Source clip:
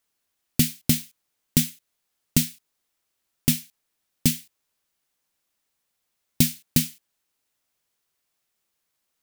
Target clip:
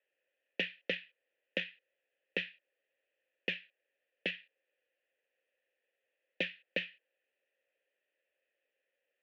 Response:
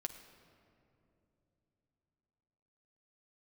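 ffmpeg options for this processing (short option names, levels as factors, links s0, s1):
-filter_complex "[0:a]highpass=f=330:t=q:w=0.5412,highpass=f=330:t=q:w=1.307,lowpass=f=3300:t=q:w=0.5176,lowpass=f=3300:t=q:w=0.7071,lowpass=f=3300:t=q:w=1.932,afreqshift=-62,aeval=exprs='(tanh(11.2*val(0)+0.6)-tanh(0.6))/11.2':c=same,asplit=3[s0][s1][s2];[s0]bandpass=f=530:t=q:w=8,volume=1[s3];[s1]bandpass=f=1840:t=q:w=8,volume=0.501[s4];[s2]bandpass=f=2480:t=q:w=8,volume=0.355[s5];[s3][s4][s5]amix=inputs=3:normalize=0,volume=5.31"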